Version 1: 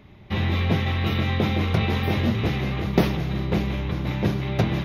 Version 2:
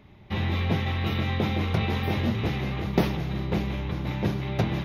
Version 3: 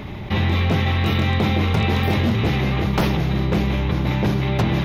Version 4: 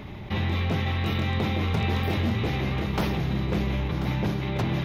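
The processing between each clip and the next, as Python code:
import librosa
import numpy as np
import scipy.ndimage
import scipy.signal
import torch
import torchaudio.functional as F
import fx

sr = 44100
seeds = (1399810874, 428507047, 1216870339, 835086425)

y1 = fx.peak_eq(x, sr, hz=860.0, db=3.0, octaves=0.23)
y1 = y1 * 10.0 ** (-3.5 / 20.0)
y2 = 10.0 ** (-17.5 / 20.0) * (np.abs((y1 / 10.0 ** (-17.5 / 20.0) + 3.0) % 4.0 - 2.0) - 1.0)
y2 = fx.env_flatten(y2, sr, amount_pct=50)
y2 = y2 * 10.0 ** (5.5 / 20.0)
y3 = y2 + 10.0 ** (-11.0 / 20.0) * np.pad(y2, (int(1038 * sr / 1000.0), 0))[:len(y2)]
y3 = y3 * 10.0 ** (-7.0 / 20.0)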